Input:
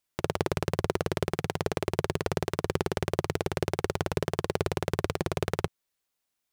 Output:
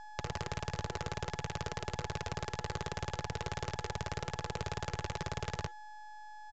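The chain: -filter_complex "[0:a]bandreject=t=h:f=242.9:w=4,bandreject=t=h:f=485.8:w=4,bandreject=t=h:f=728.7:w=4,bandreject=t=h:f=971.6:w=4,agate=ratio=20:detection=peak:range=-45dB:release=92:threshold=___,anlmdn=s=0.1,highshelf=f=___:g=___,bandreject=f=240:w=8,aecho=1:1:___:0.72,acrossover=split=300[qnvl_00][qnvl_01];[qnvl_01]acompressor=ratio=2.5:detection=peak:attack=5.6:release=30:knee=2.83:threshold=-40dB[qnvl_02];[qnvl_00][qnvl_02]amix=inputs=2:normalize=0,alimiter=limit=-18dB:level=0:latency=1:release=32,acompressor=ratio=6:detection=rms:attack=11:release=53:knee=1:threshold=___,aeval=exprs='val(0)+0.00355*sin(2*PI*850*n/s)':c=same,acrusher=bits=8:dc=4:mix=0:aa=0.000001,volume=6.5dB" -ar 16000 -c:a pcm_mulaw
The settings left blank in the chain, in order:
-47dB, 4.9k, 6, 1.8, -43dB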